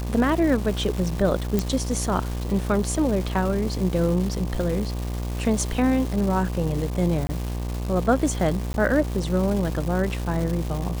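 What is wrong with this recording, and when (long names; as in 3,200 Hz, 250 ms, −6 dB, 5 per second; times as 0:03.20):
mains buzz 60 Hz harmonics 20 −28 dBFS
surface crackle 580 per second −29 dBFS
0:01.59: click
0:07.27–0:07.29: drop-out 20 ms
0:08.73–0:08.74: drop-out 11 ms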